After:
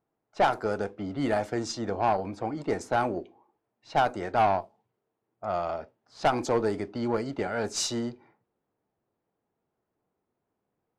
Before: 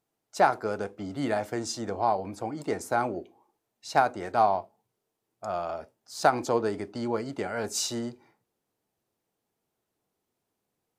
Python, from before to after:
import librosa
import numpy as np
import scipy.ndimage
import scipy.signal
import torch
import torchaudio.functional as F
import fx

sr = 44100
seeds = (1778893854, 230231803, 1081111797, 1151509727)

y = fx.tube_stage(x, sr, drive_db=19.0, bias=0.35)
y = fx.env_lowpass(y, sr, base_hz=1600.0, full_db=-25.0)
y = F.gain(torch.from_numpy(y), 3.0).numpy()